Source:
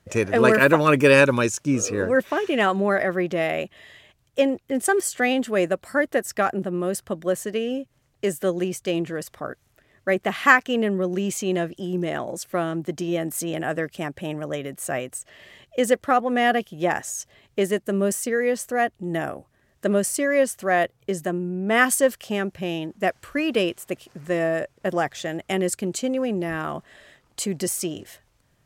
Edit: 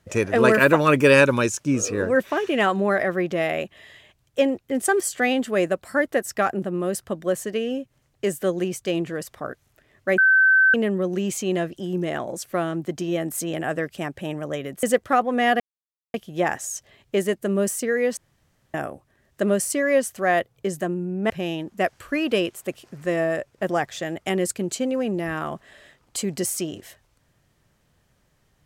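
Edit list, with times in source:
0:10.18–0:10.74: beep over 1,540 Hz −12.5 dBFS
0:14.83–0:15.81: remove
0:16.58: splice in silence 0.54 s
0:18.61–0:19.18: fill with room tone
0:21.74–0:22.53: remove

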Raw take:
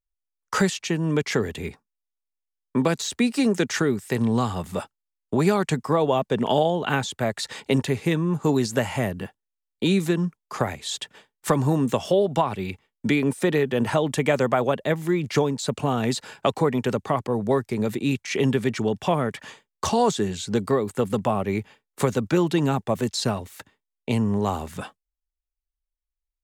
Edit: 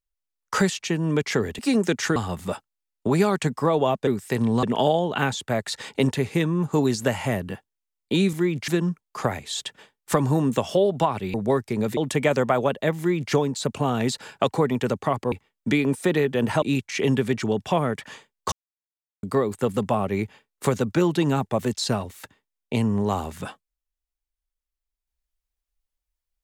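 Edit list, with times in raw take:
0:01.59–0:03.30: remove
0:03.87–0:04.43: move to 0:06.34
0:12.70–0:14.00: swap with 0:17.35–0:17.98
0:15.01–0:15.36: duplicate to 0:10.04
0:19.88–0:20.59: silence

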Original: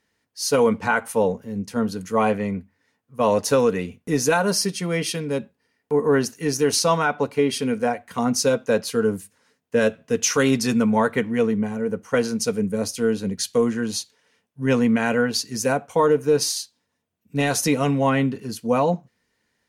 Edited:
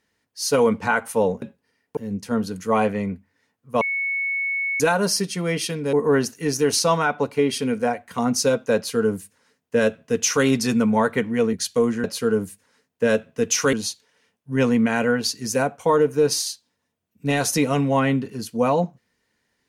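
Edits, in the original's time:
0:03.26–0:04.25: beep over 2,210 Hz −21.5 dBFS
0:05.38–0:05.93: move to 0:01.42
0:08.76–0:10.45: duplicate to 0:13.83
0:11.53–0:13.32: remove

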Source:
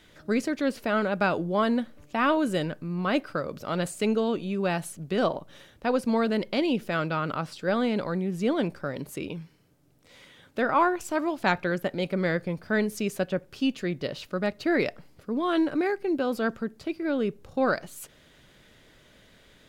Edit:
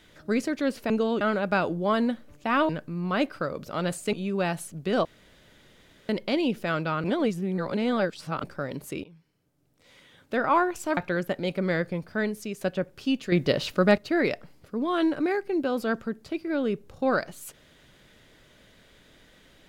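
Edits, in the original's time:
0:02.38–0:02.63: remove
0:04.07–0:04.38: move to 0:00.90
0:05.30–0:06.34: fill with room tone
0:07.29–0:08.69: reverse
0:09.29–0:10.71: fade in, from −17.5 dB
0:11.22–0:11.52: remove
0:12.46–0:13.16: fade out, to −7 dB
0:13.87–0:14.53: clip gain +8 dB

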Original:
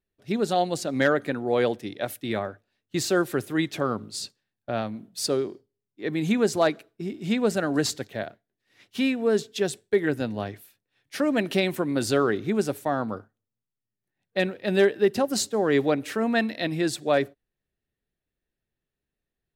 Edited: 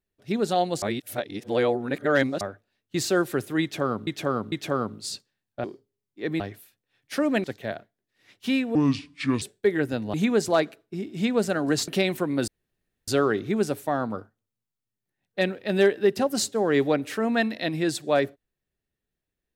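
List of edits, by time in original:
0:00.82–0:02.41: reverse
0:03.62–0:04.07: repeat, 3 plays
0:04.74–0:05.45: remove
0:06.21–0:07.95: swap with 0:10.42–0:11.46
0:09.26–0:09.70: play speed 66%
0:12.06: splice in room tone 0.60 s

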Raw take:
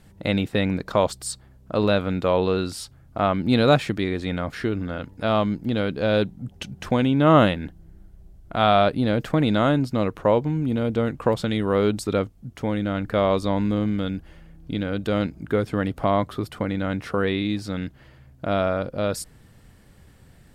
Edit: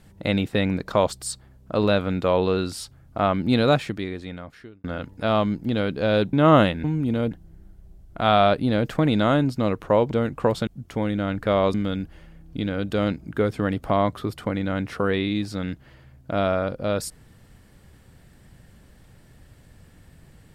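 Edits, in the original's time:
0:03.42–0:04.84: fade out
0:06.33–0:07.15: remove
0:10.46–0:10.93: move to 0:07.66
0:11.49–0:12.34: remove
0:13.41–0:13.88: remove

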